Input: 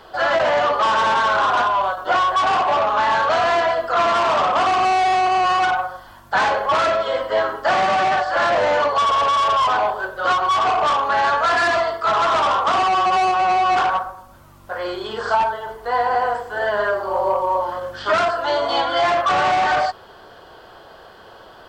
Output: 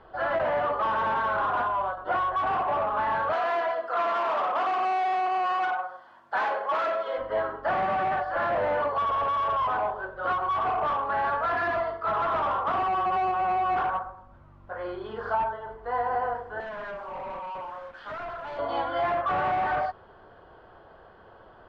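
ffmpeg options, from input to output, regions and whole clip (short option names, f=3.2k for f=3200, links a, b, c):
-filter_complex "[0:a]asettb=1/sr,asplit=3[a][b][c];[a]atrim=end=3.334[d];[b]atrim=start=3.33:end=7.18,asetpts=PTS-STARTPTS,afade=t=in:d=0.004:c=qsin,afade=t=out:st=3.846:d=0.004:c=qsin,highpass=350,aemphasis=mode=production:type=50fm[e];[c]atrim=start=7.176[f];[d][e]acrossfade=d=0.004:c1=hsin:c2=qsin[g];[g][f]acrossfade=d=0.004:c1=qsin:c2=hsin,asettb=1/sr,asplit=3[h][i][j];[h]atrim=end=16.604[k];[i]atrim=start=16.6:end=18.59,asetpts=PTS-STARTPTS,afade=t=in:d=0.004:c=qsin,afade=t=out:st=1.986:d=0.004:c=qsin,highpass=680,acrusher=bits=5:mix=0:aa=0.5,volume=25.5dB,asoftclip=hard,volume=-25.5dB[l];[j]atrim=start=18.586[m];[k][l]acrossfade=d=0.004:c1=hsin:c2=qsin[n];[n][m]acrossfade=d=0.004:c1=qsin:c2=hsin,lowpass=1.9k,lowshelf=f=160:g=6.5,volume=-8.5dB"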